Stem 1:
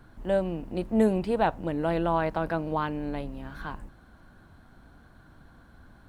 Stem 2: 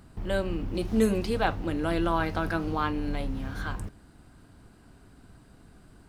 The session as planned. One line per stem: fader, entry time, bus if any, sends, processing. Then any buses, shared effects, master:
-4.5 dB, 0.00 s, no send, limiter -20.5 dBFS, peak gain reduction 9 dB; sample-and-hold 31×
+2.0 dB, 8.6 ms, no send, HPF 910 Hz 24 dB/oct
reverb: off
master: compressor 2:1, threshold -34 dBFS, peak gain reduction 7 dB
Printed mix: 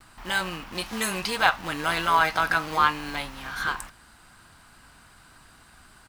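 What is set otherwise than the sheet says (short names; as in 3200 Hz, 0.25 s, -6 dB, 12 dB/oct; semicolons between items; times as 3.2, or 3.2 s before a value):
stem 2 +2.0 dB -> +10.5 dB; master: missing compressor 2:1, threshold -34 dBFS, peak gain reduction 7 dB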